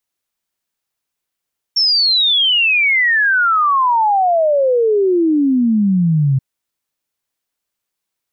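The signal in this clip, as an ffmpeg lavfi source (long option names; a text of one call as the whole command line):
ffmpeg -f lavfi -i "aevalsrc='0.299*clip(min(t,4.63-t)/0.01,0,1)*sin(2*PI*5500*4.63/log(130/5500)*(exp(log(130/5500)*t/4.63)-1))':duration=4.63:sample_rate=44100" out.wav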